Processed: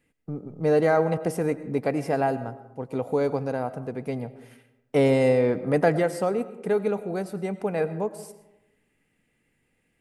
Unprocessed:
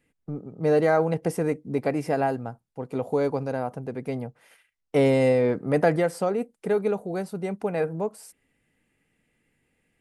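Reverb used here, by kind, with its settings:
comb and all-pass reverb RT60 0.97 s, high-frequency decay 0.45×, pre-delay 65 ms, DRR 14 dB

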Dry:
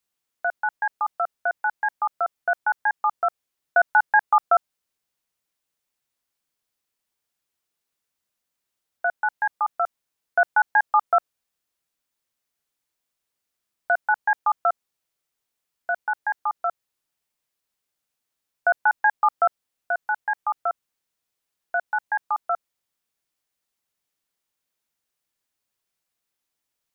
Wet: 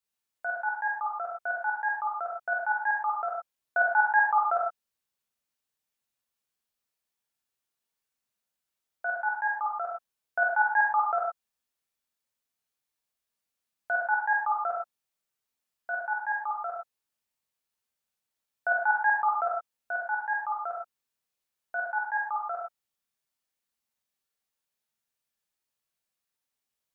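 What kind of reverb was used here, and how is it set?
reverb whose tail is shaped and stops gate 140 ms flat, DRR −2.5 dB
level −9 dB

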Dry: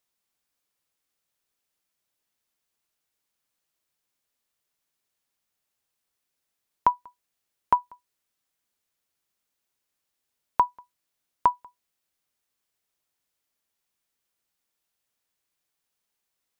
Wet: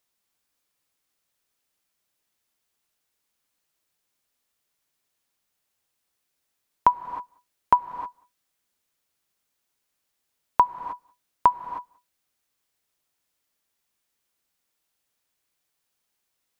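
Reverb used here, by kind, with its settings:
reverb whose tail is shaped and stops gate 340 ms rising, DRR 10.5 dB
level +3 dB

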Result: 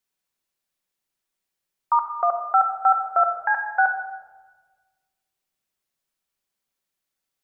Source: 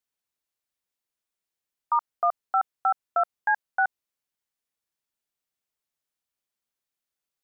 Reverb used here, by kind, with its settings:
rectangular room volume 1,100 cubic metres, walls mixed, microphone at 1.1 metres
level +3.5 dB

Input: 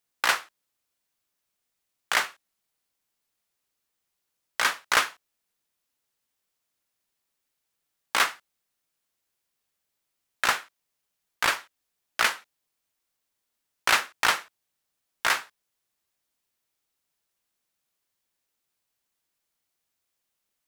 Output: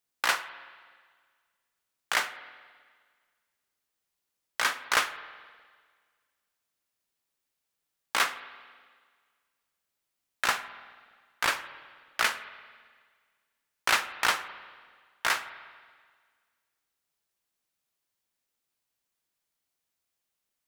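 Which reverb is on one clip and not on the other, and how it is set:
spring reverb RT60 1.7 s, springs 48/52 ms, chirp 55 ms, DRR 12.5 dB
level −3 dB

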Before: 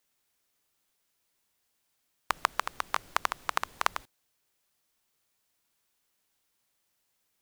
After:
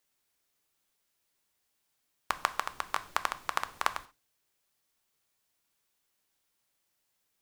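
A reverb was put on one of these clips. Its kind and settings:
reverb whose tail is shaped and stops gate 160 ms falling, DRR 11.5 dB
level −2 dB

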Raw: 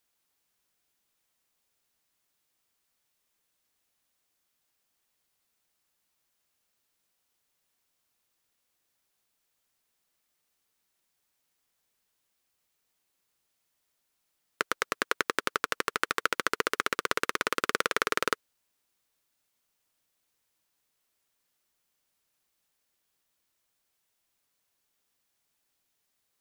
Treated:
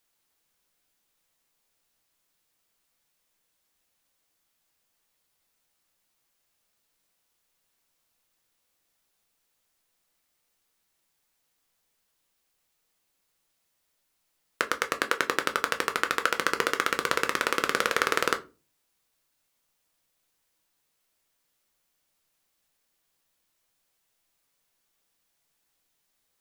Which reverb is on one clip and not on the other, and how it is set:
rectangular room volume 120 cubic metres, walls furnished, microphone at 0.67 metres
level +2 dB

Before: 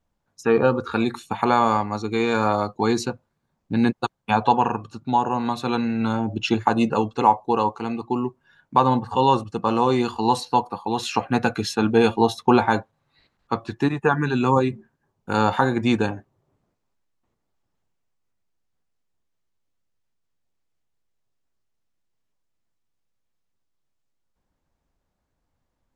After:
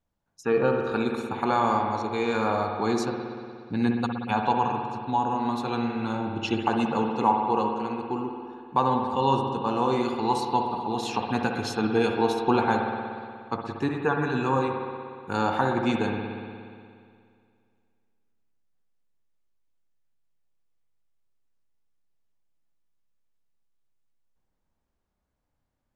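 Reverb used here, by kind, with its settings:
spring reverb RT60 2.2 s, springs 59 ms, chirp 40 ms, DRR 2.5 dB
level −6 dB

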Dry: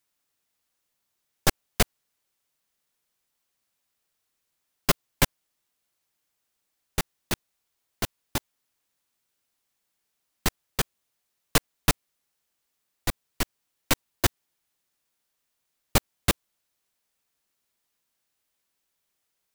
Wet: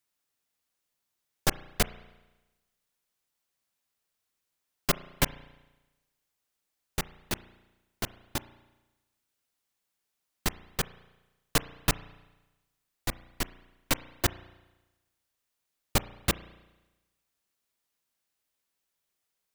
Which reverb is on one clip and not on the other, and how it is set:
spring reverb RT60 1.1 s, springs 34 ms, chirp 75 ms, DRR 16 dB
level −4 dB

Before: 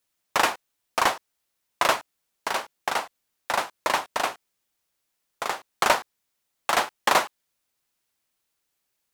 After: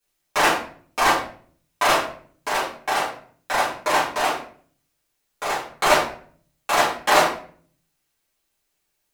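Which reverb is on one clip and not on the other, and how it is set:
rectangular room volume 52 cubic metres, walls mixed, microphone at 2.2 metres
level −6 dB

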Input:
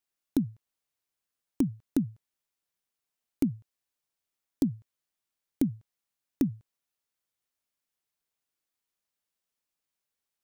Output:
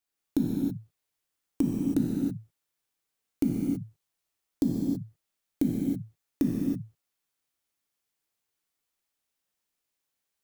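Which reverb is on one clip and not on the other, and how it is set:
reverb whose tail is shaped and stops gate 350 ms flat, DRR −3 dB
level −1 dB

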